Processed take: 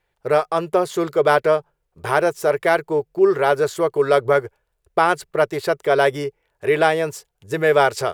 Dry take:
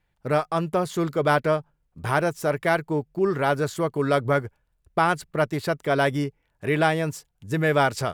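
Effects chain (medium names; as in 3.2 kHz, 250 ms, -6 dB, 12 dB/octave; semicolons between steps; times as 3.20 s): resonant low shelf 320 Hz -6.5 dB, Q 3; trim +3.5 dB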